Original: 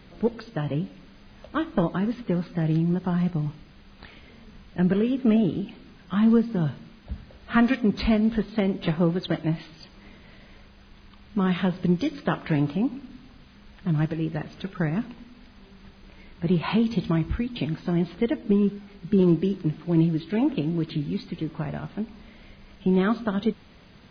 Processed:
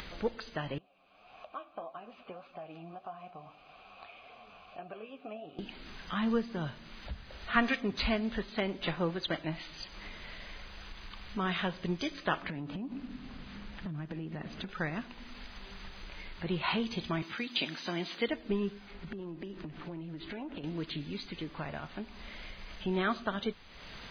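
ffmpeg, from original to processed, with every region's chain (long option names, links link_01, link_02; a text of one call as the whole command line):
ffmpeg -i in.wav -filter_complex "[0:a]asettb=1/sr,asplit=3[link_01][link_02][link_03];[link_01]atrim=end=0.784[link_04];[link_02]atrim=start=0.78:end=5.59,asetpts=PTS-STARTPTS,afade=type=in:duration=0.004:curve=qsin,afade=type=out:start_time=4.806:duration=0.004:curve=qsin,lowshelf=frequency=200:gain=9,flanger=delay=6.4:depth=5.6:regen=51:speed=1.7:shape=triangular,asplit=3[link_05][link_06][link_07];[link_05]bandpass=frequency=730:width_type=q:width=8,volume=0dB[link_08];[link_06]bandpass=frequency=1090:width_type=q:width=8,volume=-6dB[link_09];[link_07]bandpass=frequency=2440:width_type=q:width=8,volume=-9dB[link_10];[link_08][link_09][link_10]amix=inputs=3:normalize=0[link_11];[link_03]atrim=start=5.586[link_12];[link_04][link_11]acrossfade=duration=0.004:curve1=hsin:curve2=qsin[link_13];[link_13][link_12]acrossfade=duration=0.004:curve1=qsin:curve2=hsin,asettb=1/sr,asplit=3[link_14][link_15][link_16];[link_14]atrim=end=12.424[link_17];[link_15]atrim=start=12.42:end=14.69,asetpts=PTS-STARTPTS,afade=type=in:duration=0.004:curve=qsin,afade=type=out:start_time=2.266:duration=0.004:curve=qsin,lowpass=frequency=3800:poles=1,equalizer=frequency=200:width_type=o:width=1.7:gain=11,acompressor=threshold=-24dB:ratio=12:attack=3.2:release=140:knee=1:detection=peak[link_18];[link_16]atrim=start=14.686[link_19];[link_17][link_18]acrossfade=duration=0.004:curve1=hsin:curve2=qsin[link_20];[link_20][link_19]acrossfade=duration=0.004:curve1=qsin:curve2=hsin,asettb=1/sr,asplit=3[link_21][link_22][link_23];[link_21]atrim=end=17.224[link_24];[link_22]atrim=start=17.22:end=18.28,asetpts=PTS-STARTPTS,afade=type=in:duration=0.004:curve=qsin,afade=type=out:start_time=1.056:duration=0.004:curve=qsin,highpass=frequency=180:width=0.5412,highpass=frequency=180:width=1.3066,highshelf=frequency=2700:gain=11[link_25];[link_23]atrim=start=18.276[link_26];[link_24][link_25]acrossfade=duration=0.004:curve1=hsin:curve2=qsin[link_27];[link_27][link_26]acrossfade=duration=0.004:curve1=qsin:curve2=hsin,asettb=1/sr,asplit=3[link_28][link_29][link_30];[link_28]atrim=end=18.914[link_31];[link_29]atrim=start=18.91:end=20.64,asetpts=PTS-STARTPTS,afade=type=in:duration=0.004:curve=qsin,afade=type=out:start_time=1.726:duration=0.004:curve=qsin,aemphasis=mode=reproduction:type=75fm,acompressor=threshold=-31dB:ratio=5:attack=3.2:release=140:knee=1:detection=peak[link_32];[link_30]atrim=start=20.636[link_33];[link_31][link_32]acrossfade=duration=0.004:curve1=hsin:curve2=qsin[link_34];[link_34][link_33]acrossfade=duration=0.004:curve1=qsin:curve2=hsin,equalizer=frequency=170:width=0.35:gain=-13,acompressor=mode=upward:threshold=-36dB:ratio=2.5" out.wav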